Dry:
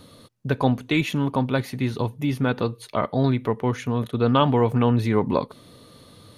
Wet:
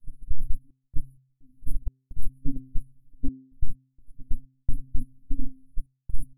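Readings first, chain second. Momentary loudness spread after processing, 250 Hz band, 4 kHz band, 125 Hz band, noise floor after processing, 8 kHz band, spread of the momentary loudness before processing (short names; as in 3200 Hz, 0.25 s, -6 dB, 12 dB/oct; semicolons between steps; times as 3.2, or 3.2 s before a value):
8 LU, -19.0 dB, under -40 dB, -14.5 dB, -78 dBFS, -14.0 dB, 8 LU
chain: LFO high-pass square 2.8 Hz 660–1900 Hz; air absorption 58 m; added noise brown -40 dBFS; FFT band-reject 300–9600 Hz; treble ducked by the level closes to 960 Hz, closed at -15 dBFS; metallic resonator 130 Hz, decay 0.26 s, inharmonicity 0.008; shoebox room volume 130 m³, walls furnished, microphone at 2.8 m; gate -24 dBFS, range -33 dB; step gate "xxx.x.xx.xx" 64 bpm -60 dB; high shelf 7800 Hz +8.5 dB; limiter -26 dBFS, peak gain reduction 10.5 dB; de-hum 131.4 Hz, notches 3; gain +15.5 dB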